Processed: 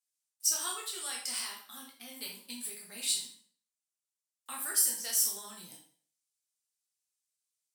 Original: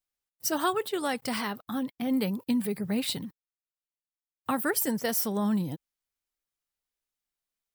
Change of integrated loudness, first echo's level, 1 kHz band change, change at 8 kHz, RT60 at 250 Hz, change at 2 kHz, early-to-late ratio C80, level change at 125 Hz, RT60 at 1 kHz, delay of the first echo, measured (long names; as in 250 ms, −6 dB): −2.0 dB, no echo audible, −13.5 dB, +6.5 dB, 0.45 s, −8.5 dB, 9.5 dB, below −25 dB, 0.50 s, no echo audible